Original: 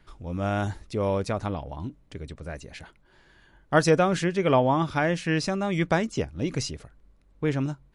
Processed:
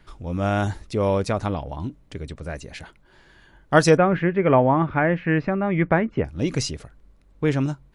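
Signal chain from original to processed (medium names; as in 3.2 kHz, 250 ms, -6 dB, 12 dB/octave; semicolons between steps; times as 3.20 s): 3.97–6.25 s: Chebyshev low-pass 2.1 kHz, order 3; trim +4.5 dB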